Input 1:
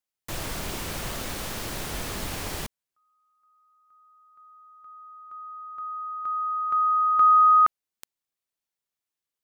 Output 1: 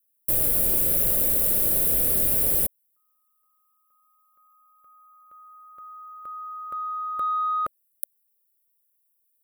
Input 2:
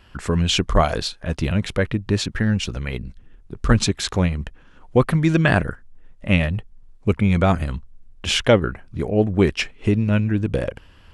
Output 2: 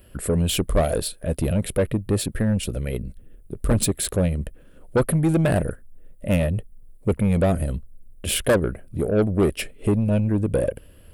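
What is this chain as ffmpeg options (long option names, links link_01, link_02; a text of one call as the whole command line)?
ffmpeg -i in.wav -af "lowshelf=frequency=710:width_type=q:width=3:gain=6.5,acontrast=71,aexciter=amount=14.6:drive=6:freq=8900,volume=-12.5dB" out.wav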